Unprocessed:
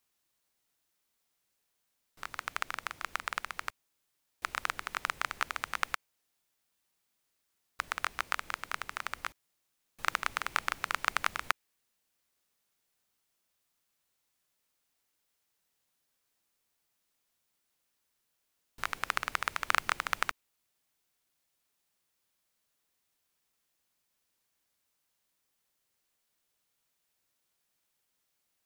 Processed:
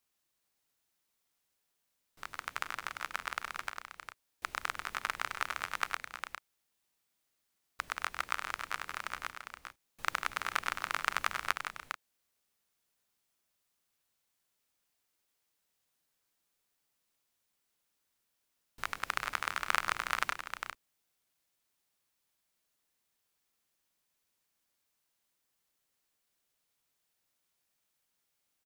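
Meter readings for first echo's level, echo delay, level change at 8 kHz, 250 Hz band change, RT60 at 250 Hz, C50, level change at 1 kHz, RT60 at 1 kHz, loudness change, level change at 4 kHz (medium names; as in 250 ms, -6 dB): -11.0 dB, 100 ms, -1.5 dB, -1.0 dB, no reverb, no reverb, -1.5 dB, no reverb, -2.0 dB, -1.5 dB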